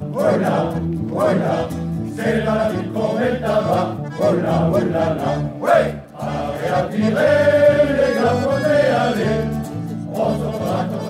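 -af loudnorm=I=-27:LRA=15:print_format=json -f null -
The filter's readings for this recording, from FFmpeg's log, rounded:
"input_i" : "-18.6",
"input_tp" : "-2.8",
"input_lra" : "3.2",
"input_thresh" : "-28.6",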